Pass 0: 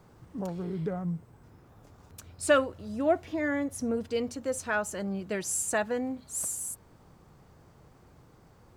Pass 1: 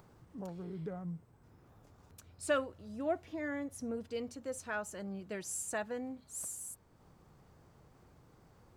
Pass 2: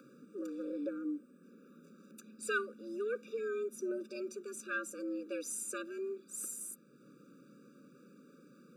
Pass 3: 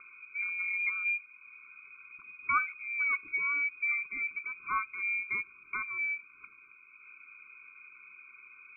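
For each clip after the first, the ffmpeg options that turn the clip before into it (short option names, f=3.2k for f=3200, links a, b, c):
-af "acompressor=mode=upward:threshold=-46dB:ratio=2.5,volume=-9dB"
-af "afreqshift=130,afftfilt=real='re*eq(mod(floor(b*sr/1024/570),2),0)':imag='im*eq(mod(floor(b*sr/1024/570),2),0)':win_size=1024:overlap=0.75,volume=3.5dB"
-af "lowpass=f=2.3k:t=q:w=0.5098,lowpass=f=2.3k:t=q:w=0.6013,lowpass=f=2.3k:t=q:w=0.9,lowpass=f=2.3k:t=q:w=2.563,afreqshift=-2700,volume=6dB"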